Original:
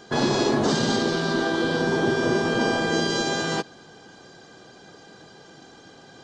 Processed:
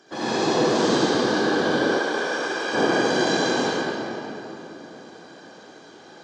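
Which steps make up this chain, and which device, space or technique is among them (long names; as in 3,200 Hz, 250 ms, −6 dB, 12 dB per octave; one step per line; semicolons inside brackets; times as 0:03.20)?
whispering ghost (random phases in short frames; high-pass filter 220 Hz 12 dB per octave; convolution reverb RT60 3.6 s, pre-delay 61 ms, DRR −10 dB)
0:01.97–0:02.73: high-pass filter 550 Hz → 1,500 Hz 6 dB per octave
level −8 dB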